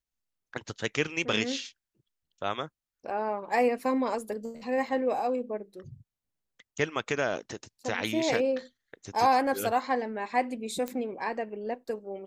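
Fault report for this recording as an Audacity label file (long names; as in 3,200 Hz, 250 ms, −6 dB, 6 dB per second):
10.880000	10.880000	click −18 dBFS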